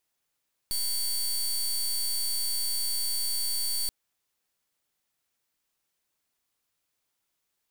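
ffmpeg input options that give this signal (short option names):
-f lavfi -i "aevalsrc='0.0376*(2*lt(mod(4530*t,1),0.2)-1)':d=3.18:s=44100"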